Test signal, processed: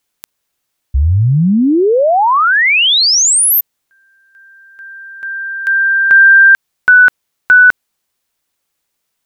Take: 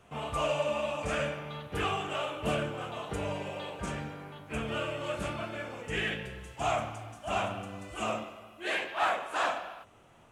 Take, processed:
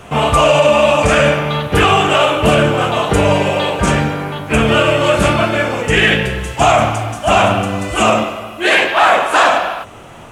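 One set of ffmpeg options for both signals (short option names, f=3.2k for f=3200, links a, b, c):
-af "alimiter=level_in=24dB:limit=-1dB:release=50:level=0:latency=1,volume=-1dB"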